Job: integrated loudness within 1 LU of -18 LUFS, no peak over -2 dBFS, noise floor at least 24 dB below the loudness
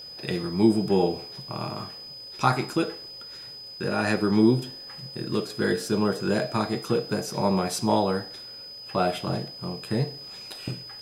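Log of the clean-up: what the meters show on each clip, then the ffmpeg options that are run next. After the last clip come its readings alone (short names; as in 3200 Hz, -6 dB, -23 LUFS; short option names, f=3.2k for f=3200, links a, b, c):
steady tone 5000 Hz; tone level -39 dBFS; loudness -26.5 LUFS; peak -6.5 dBFS; loudness target -18.0 LUFS
-> -af "bandreject=f=5k:w=30"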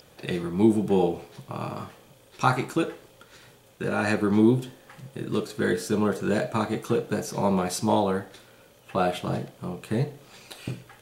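steady tone none; loudness -26.0 LUFS; peak -6.5 dBFS; loudness target -18.0 LUFS
-> -af "volume=8dB,alimiter=limit=-2dB:level=0:latency=1"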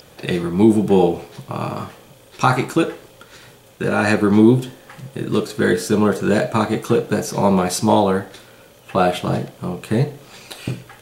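loudness -18.5 LUFS; peak -2.0 dBFS; noise floor -48 dBFS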